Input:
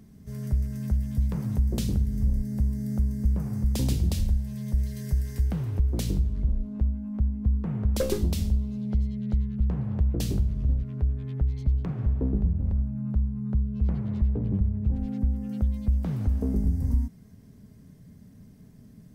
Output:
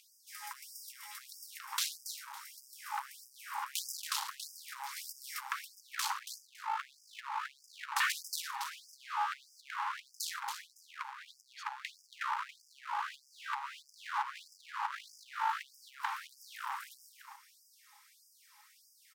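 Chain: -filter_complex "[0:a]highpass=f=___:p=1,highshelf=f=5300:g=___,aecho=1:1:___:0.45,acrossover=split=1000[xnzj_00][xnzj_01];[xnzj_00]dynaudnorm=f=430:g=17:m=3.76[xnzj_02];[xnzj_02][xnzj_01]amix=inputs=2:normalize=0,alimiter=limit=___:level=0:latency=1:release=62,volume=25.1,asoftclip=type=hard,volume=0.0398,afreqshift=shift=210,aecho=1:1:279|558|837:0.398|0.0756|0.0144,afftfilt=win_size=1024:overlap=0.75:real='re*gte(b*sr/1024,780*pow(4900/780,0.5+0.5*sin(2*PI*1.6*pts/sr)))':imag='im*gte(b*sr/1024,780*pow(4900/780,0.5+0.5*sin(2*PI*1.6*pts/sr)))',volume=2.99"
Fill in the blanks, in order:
120, -4.5, 3.6, 0.178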